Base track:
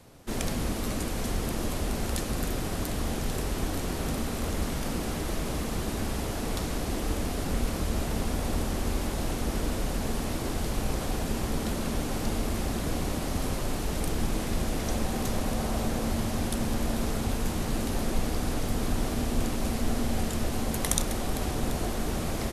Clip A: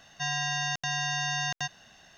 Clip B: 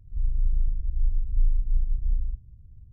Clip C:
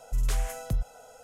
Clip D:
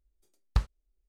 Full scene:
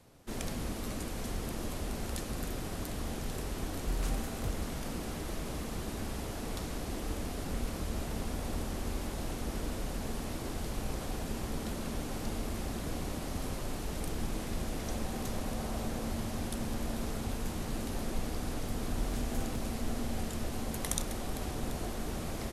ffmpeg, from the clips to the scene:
-filter_complex "[3:a]asplit=2[a][b];[0:a]volume=-7dB[c];[b]alimiter=level_in=2dB:limit=-24dB:level=0:latency=1:release=71,volume=-2dB[d];[a]atrim=end=1.23,asetpts=PTS-STARTPTS,volume=-9dB,afade=t=in:d=0.004:c=hsin,afade=t=out:st=1.226:d=0.004:c=hsin,adelay=3740[e];[d]atrim=end=1.23,asetpts=PTS-STARTPTS,volume=-7.5dB,afade=t=in:d=0.004:c=hsin,afade=t=out:st=1.226:d=0.004:c=hsin,adelay=18850[f];[c][e][f]amix=inputs=3:normalize=0"

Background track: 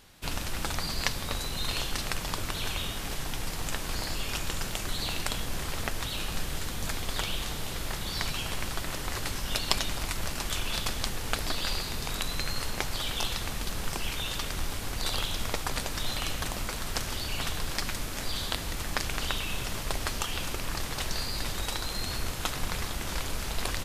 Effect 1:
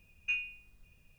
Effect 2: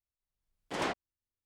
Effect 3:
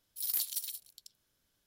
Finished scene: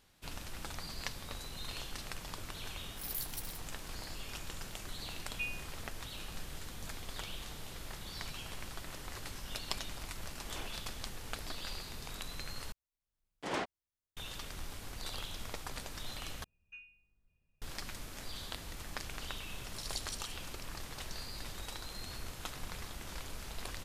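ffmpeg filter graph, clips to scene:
-filter_complex "[3:a]asplit=2[a][b];[1:a]asplit=2[c][d];[2:a]asplit=2[e][f];[0:a]volume=-11.5dB[g];[c]bandpass=f=2k:t=q:w=0.96:csg=0[h];[d]highshelf=f=2.8k:g=-10.5[i];[b]lowpass=f=8k:w=0.5412,lowpass=f=8k:w=1.3066[j];[g]asplit=3[k][l][m];[k]atrim=end=12.724[n];[f]atrim=end=1.45,asetpts=PTS-STARTPTS,volume=-3dB[o];[l]atrim=start=14.166:end=16.444[p];[i]atrim=end=1.18,asetpts=PTS-STARTPTS,volume=-14dB[q];[m]atrim=start=17.616[r];[a]atrim=end=1.66,asetpts=PTS-STARTPTS,volume=-7.5dB,afade=t=in:d=0.004:c=hsin,afade=t=out:st=1.656:d=0.004:c=hsin,adelay=2810[s];[h]atrim=end=1.18,asetpts=PTS-STARTPTS,volume=-5dB,afade=t=in:d=0.004:c=hsin,afade=t=out:st=1.176:d=0.004:c=hsin,adelay=5110[t];[e]atrim=end=1.45,asetpts=PTS-STARTPTS,volume=-15.5dB,afade=t=in:d=0.004:c=hsin,afade=t=out:st=1.446:d=0.004:c=hsin,adelay=9750[u];[j]atrim=end=1.66,asetpts=PTS-STARTPTS,volume=-0.5dB,afade=t=in:d=0.004:c=hsin,afade=t=out:st=1.656:d=0.004:c=hsin,adelay=862596S[v];[n][o]acrossfade=d=0.004:c1=hsin:c2=hsin[w];[w][p]acrossfade=d=0.004:c1=hsin:c2=hsin[x];[x][q]acrossfade=d=0.004:c1=hsin:c2=hsin[y];[y][r]acrossfade=d=0.004:c1=hsin:c2=hsin[z];[z][s][t][u][v]amix=inputs=5:normalize=0"

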